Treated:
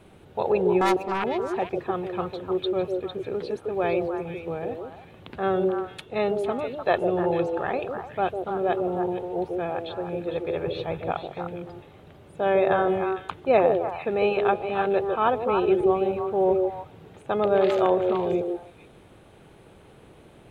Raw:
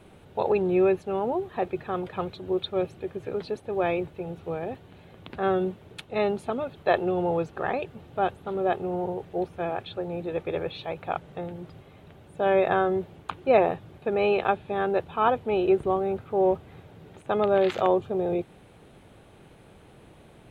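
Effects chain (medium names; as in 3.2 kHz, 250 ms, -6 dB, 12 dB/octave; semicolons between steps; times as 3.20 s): 0.81–1.24 s: self-modulated delay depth 0.97 ms; 10.67–11.12 s: bass shelf 320 Hz +9 dB; repeats whose band climbs or falls 151 ms, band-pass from 410 Hz, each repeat 1.4 oct, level -1 dB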